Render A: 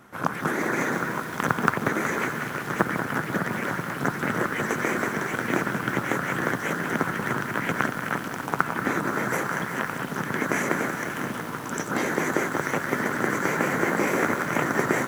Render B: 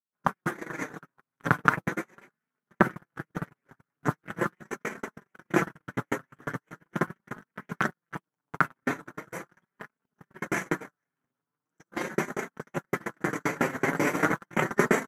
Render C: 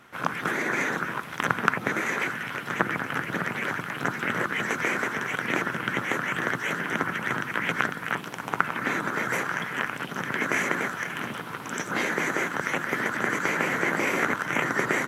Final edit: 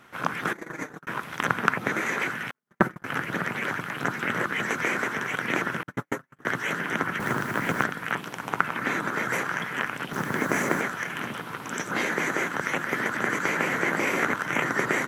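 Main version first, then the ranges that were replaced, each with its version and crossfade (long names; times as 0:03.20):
C
0:00.53–0:01.07: punch in from B
0:02.51–0:03.04: punch in from B
0:05.83–0:06.45: punch in from B
0:07.20–0:07.84: punch in from A
0:10.13–0:10.81: punch in from A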